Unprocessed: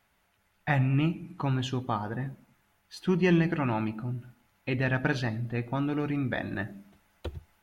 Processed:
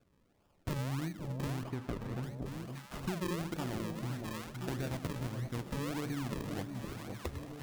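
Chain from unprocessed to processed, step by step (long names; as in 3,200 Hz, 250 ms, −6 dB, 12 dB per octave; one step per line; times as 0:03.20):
sample-and-hold swept by an LFO 42×, swing 100% 1.6 Hz
delay that swaps between a low-pass and a high-pass 512 ms, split 810 Hz, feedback 69%, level −11 dB
downward compressor 5 to 1, threshold −35 dBFS, peak gain reduction 15.5 dB
0:01.63–0:02.23: high-shelf EQ 3,000 Hz −10 dB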